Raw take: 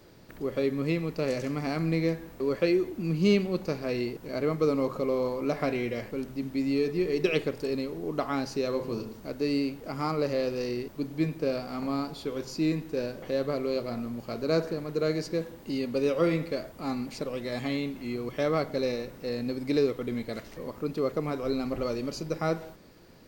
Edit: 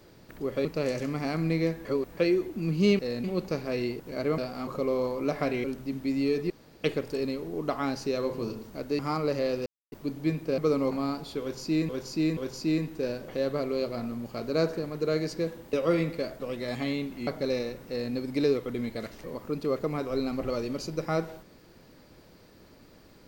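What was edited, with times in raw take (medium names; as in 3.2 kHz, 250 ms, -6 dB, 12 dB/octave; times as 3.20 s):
0.65–1.07 s: delete
2.27–2.59 s: reverse
4.55–4.88 s: swap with 11.52–11.81 s
5.85–6.14 s: delete
7.00–7.34 s: room tone
9.49–9.93 s: delete
10.60–10.86 s: mute
12.31–12.79 s: loop, 3 plays
15.67–16.06 s: delete
16.73–17.24 s: delete
18.11–18.60 s: delete
19.21–19.46 s: copy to 3.41 s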